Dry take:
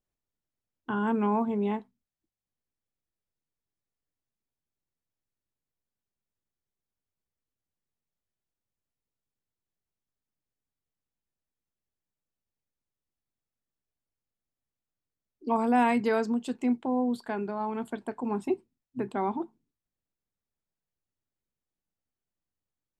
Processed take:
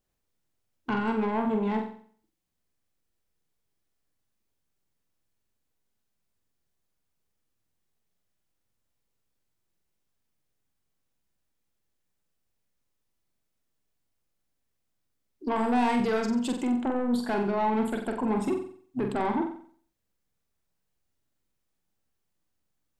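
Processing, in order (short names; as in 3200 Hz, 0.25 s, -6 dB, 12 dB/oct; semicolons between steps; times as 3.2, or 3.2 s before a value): in parallel at -2 dB: negative-ratio compressor -30 dBFS, ratio -0.5; on the sum: soft clip -22 dBFS, distortion -13 dB; flutter echo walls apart 7.8 m, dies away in 0.51 s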